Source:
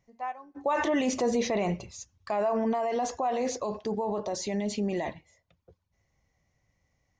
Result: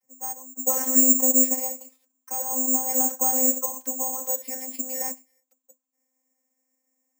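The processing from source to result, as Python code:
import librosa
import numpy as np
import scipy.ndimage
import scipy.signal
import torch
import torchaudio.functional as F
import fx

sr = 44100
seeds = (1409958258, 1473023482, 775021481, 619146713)

y = fx.peak_eq(x, sr, hz=1600.0, db=7.5, octaves=1.9, at=(2.88, 5.11))
y = fx.vocoder(y, sr, bands=32, carrier='saw', carrier_hz=260.0)
y = (np.kron(scipy.signal.resample_poly(y, 1, 6), np.eye(6)[0]) * 6)[:len(y)]
y = y * 10.0 ** (-2.5 / 20.0)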